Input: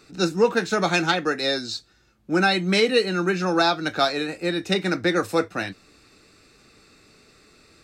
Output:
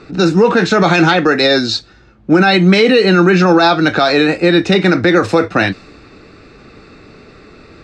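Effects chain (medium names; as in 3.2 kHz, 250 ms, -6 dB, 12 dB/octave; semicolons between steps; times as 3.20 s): distance through air 120 m; loudness maximiser +18.5 dB; tape noise reduction on one side only decoder only; trim -1 dB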